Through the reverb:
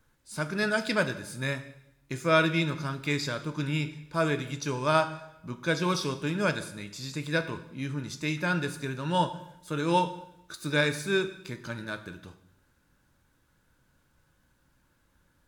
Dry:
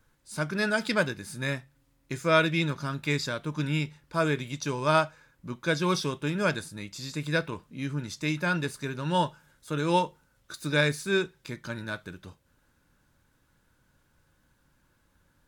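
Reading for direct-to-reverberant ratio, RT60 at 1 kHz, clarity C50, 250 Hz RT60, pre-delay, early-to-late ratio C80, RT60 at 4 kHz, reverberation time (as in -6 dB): 9.5 dB, 0.85 s, 13.0 dB, 0.95 s, 8 ms, 15.0 dB, 0.80 s, 0.85 s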